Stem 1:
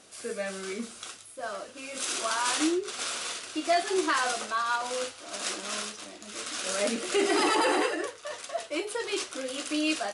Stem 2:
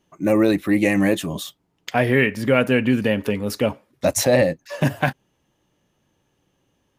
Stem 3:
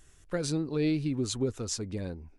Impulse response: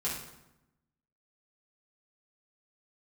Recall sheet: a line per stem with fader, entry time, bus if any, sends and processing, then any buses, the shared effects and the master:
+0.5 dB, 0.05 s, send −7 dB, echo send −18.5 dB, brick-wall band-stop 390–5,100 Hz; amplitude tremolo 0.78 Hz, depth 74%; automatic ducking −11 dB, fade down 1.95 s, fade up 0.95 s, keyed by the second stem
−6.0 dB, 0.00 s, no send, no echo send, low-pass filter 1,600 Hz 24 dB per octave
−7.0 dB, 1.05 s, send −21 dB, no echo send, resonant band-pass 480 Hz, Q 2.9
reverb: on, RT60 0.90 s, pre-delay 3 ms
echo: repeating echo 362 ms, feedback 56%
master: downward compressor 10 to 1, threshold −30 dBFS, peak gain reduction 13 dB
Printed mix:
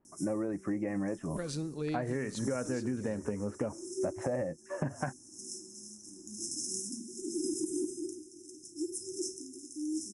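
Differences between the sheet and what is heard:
stem 1: send −7 dB → −13 dB
stem 3: missing resonant band-pass 480 Hz, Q 2.9

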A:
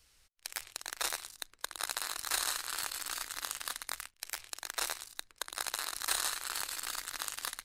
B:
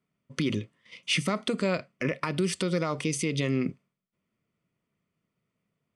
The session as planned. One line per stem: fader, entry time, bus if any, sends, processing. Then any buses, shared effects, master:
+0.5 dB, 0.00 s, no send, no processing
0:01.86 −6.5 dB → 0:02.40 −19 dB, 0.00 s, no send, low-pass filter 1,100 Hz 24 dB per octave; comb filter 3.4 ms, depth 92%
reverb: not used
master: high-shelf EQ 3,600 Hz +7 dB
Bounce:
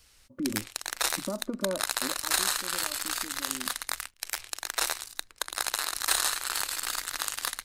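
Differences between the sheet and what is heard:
stem A +0.5 dB → +6.5 dB
master: missing high-shelf EQ 3,600 Hz +7 dB

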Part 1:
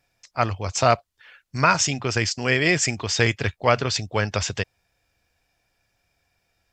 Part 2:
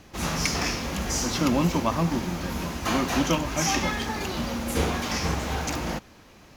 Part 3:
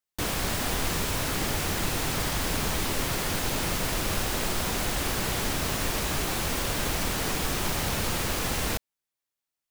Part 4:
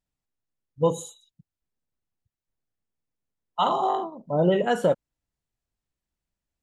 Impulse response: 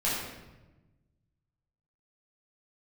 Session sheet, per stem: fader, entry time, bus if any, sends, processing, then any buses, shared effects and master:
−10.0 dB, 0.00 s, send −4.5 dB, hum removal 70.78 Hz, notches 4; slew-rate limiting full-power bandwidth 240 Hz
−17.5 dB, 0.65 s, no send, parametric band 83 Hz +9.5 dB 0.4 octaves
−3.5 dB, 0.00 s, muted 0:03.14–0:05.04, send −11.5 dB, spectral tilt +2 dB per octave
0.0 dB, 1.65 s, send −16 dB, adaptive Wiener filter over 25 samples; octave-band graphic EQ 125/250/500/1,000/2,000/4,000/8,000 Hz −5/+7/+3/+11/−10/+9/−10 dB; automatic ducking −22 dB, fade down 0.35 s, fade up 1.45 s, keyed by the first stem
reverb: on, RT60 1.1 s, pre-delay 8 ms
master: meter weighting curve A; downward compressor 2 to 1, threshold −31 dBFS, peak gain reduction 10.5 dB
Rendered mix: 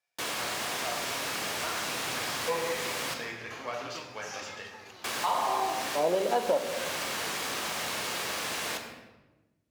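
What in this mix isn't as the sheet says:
stem 1 −10.0 dB → −20.5 dB
stem 3: missing spectral tilt +2 dB per octave

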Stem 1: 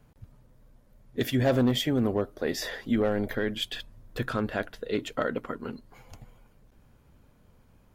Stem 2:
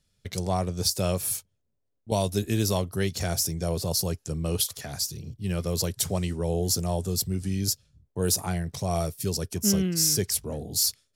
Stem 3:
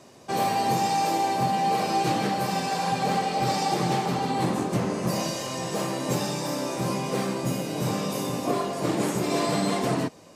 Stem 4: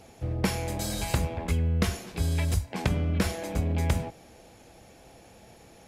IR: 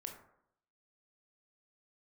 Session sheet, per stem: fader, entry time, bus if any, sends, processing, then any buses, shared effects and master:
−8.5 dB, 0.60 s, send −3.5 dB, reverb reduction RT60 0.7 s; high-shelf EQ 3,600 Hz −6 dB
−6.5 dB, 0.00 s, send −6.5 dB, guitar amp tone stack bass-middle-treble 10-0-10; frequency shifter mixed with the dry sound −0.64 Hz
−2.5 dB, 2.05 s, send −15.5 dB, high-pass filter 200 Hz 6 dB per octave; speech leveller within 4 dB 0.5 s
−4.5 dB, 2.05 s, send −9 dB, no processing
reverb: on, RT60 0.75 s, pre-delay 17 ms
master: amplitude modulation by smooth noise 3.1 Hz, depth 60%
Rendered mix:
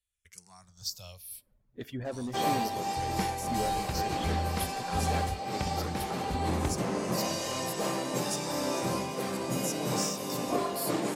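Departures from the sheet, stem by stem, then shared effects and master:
stem 4: entry 2.05 s → 2.75 s
reverb return −10.0 dB

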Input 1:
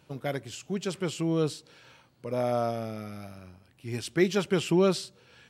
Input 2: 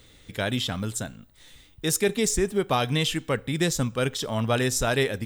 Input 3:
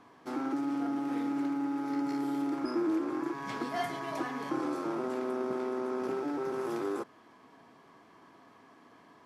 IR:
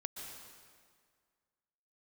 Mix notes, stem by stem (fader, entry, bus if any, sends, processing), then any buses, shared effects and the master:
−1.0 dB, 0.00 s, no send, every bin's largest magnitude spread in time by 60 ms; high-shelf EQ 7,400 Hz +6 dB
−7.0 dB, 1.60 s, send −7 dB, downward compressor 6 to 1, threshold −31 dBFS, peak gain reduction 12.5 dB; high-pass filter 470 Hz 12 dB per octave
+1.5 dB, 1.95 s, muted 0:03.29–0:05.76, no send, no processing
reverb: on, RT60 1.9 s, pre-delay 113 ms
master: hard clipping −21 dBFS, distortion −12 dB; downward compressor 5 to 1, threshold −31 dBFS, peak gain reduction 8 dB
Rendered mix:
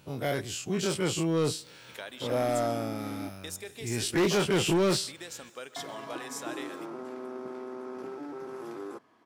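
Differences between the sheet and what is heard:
stem 3 +1.5 dB → −6.0 dB
master: missing downward compressor 5 to 1, threshold −31 dBFS, peak gain reduction 8 dB

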